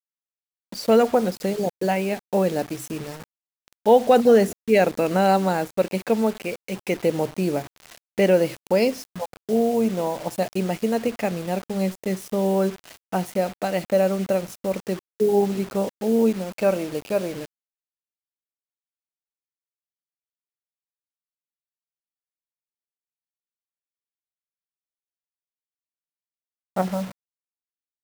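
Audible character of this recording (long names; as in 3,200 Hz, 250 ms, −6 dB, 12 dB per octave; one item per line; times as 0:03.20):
a quantiser's noise floor 6 bits, dither none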